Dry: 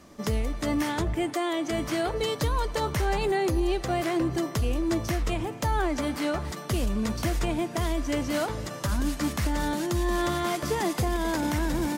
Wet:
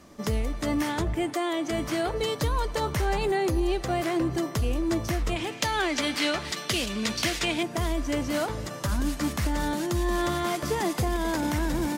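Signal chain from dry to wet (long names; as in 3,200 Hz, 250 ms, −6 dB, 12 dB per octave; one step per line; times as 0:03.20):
0:05.36–0:07.63: meter weighting curve D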